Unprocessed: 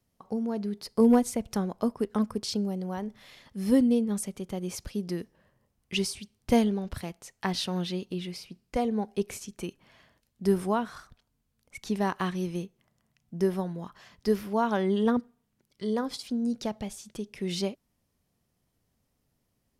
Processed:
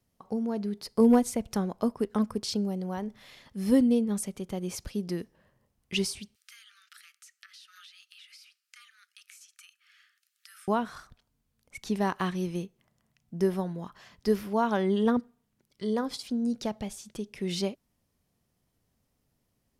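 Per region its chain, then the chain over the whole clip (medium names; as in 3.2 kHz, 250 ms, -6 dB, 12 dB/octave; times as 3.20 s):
6.35–10.68 s: Chebyshev high-pass 1.2 kHz, order 10 + compression 16:1, threshold -48 dBFS + tape noise reduction on one side only encoder only
whole clip: none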